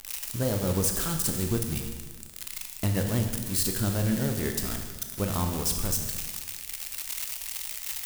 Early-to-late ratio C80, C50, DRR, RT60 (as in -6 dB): 7.5 dB, 6.0 dB, 4.0 dB, 1.4 s